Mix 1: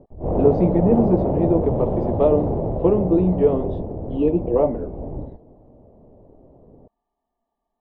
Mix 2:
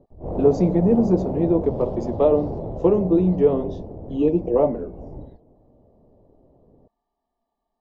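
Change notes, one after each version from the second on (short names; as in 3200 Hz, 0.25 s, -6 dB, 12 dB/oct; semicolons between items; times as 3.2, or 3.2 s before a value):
background -6.5 dB; master: remove LPF 3400 Hz 24 dB/oct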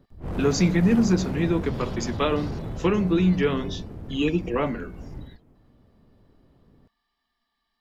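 master: remove EQ curve 210 Hz 0 dB, 610 Hz +11 dB, 900 Hz +3 dB, 1500 Hz -18 dB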